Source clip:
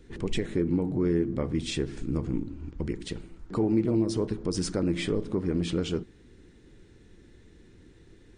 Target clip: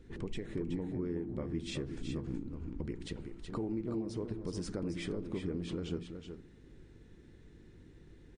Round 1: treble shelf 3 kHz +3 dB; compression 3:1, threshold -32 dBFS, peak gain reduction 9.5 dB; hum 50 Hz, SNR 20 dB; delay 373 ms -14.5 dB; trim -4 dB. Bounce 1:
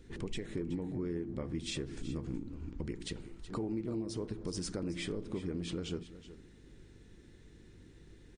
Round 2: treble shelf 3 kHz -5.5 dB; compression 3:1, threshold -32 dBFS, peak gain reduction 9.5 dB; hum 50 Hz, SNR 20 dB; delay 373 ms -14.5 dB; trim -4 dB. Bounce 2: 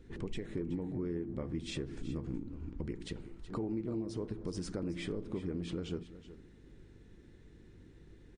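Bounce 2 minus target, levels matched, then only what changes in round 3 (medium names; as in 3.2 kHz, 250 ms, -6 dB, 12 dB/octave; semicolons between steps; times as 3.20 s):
echo-to-direct -7 dB
change: delay 373 ms -7.5 dB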